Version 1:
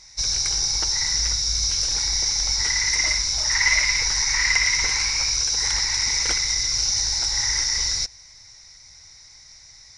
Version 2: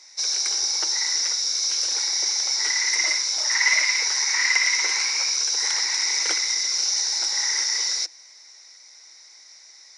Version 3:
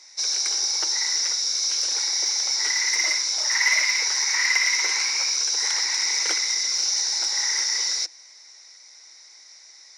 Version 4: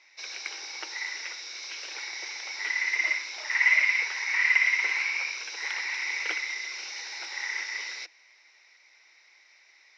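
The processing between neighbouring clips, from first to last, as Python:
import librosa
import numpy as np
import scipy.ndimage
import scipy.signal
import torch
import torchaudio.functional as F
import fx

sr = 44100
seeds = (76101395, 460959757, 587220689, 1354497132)

y1 = scipy.signal.sosfilt(scipy.signal.cheby1(8, 1.0, 310.0, 'highpass', fs=sr, output='sos'), x)
y2 = 10.0 ** (-8.5 / 20.0) * np.tanh(y1 / 10.0 ** (-8.5 / 20.0))
y3 = fx.lowpass_res(y2, sr, hz=2600.0, q=3.4)
y3 = y3 * librosa.db_to_amplitude(-6.5)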